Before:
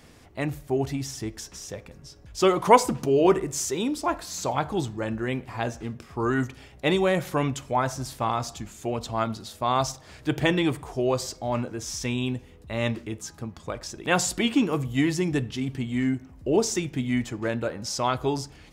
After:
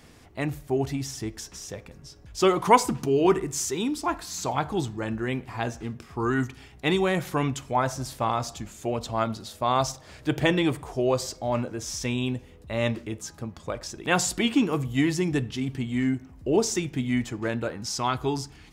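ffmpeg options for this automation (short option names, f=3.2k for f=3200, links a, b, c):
-af "asetnsamples=n=441:p=0,asendcmd='2.64 equalizer g -14;4.46 equalizer g -5;6.19 equalizer g -12.5;7 equalizer g -5.5;7.75 equalizer g 3;13.88 equalizer g -3;17.75 equalizer g -14.5',equalizer=f=560:t=o:w=0.27:g=-2.5"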